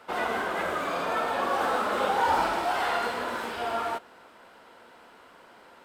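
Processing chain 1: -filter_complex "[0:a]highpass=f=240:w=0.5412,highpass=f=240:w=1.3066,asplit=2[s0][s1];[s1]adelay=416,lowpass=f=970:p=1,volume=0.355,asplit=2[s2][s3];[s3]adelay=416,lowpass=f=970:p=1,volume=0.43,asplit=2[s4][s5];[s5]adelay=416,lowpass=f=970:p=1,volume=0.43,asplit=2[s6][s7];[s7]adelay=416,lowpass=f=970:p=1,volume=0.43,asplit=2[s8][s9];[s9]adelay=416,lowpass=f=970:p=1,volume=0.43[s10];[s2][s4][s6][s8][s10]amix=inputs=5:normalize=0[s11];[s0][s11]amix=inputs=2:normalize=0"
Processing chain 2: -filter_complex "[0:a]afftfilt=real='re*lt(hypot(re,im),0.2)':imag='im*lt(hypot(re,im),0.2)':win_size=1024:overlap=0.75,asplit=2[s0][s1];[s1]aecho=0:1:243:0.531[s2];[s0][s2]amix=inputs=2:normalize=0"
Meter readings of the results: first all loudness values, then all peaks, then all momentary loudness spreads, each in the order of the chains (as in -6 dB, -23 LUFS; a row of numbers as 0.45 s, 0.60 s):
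-27.5 LUFS, -29.5 LUFS; -13.5 dBFS, -16.5 dBFS; 11 LU, 6 LU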